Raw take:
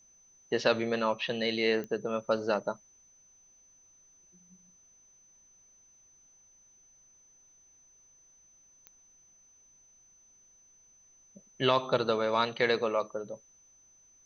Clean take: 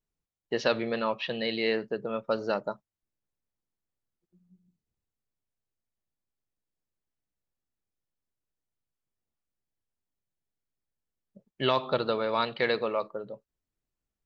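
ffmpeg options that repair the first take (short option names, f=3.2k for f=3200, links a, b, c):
-af "adeclick=t=4,bandreject=f=6.1k:w=30,agate=range=-21dB:threshold=-54dB"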